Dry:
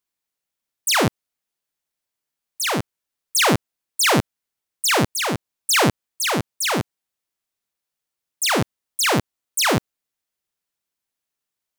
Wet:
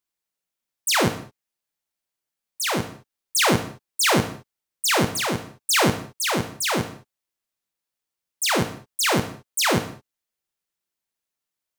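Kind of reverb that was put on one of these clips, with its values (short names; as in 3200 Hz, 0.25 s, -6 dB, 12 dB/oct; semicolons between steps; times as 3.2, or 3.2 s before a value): non-linear reverb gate 0.24 s falling, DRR 7.5 dB; gain -2.5 dB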